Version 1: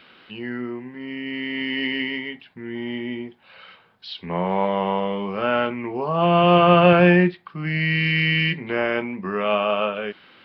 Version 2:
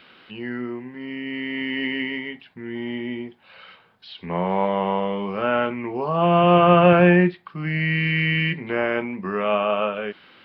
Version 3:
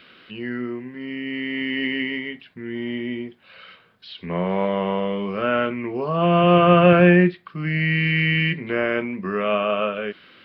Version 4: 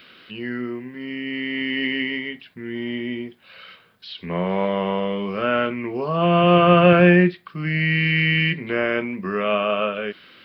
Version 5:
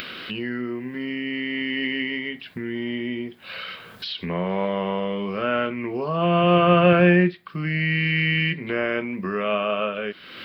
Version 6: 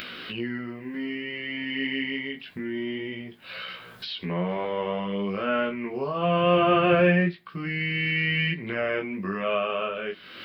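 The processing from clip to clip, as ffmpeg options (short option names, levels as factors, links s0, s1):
-filter_complex "[0:a]acrossover=split=3100[s0][s1];[s1]acompressor=threshold=0.00398:ratio=4:attack=1:release=60[s2];[s0][s2]amix=inputs=2:normalize=0"
-af "equalizer=f=850:w=3.5:g=-10,volume=1.19"
-af "crystalizer=i=1.5:c=0"
-af "acompressor=mode=upward:threshold=0.1:ratio=2.5,volume=0.75"
-af "flanger=delay=16.5:depth=5.3:speed=0.25"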